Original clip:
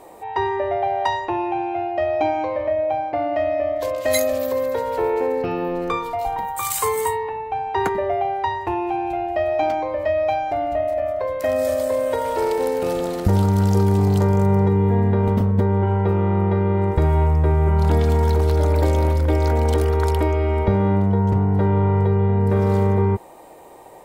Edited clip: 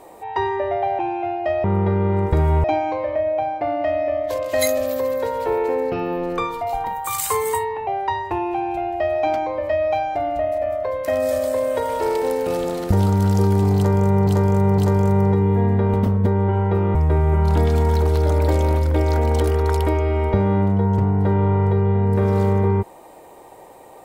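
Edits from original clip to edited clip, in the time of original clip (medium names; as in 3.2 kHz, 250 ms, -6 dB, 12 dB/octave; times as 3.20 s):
0.99–1.51 s: delete
7.39–8.23 s: delete
14.12–14.63 s: loop, 3 plays
16.29–17.29 s: move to 2.16 s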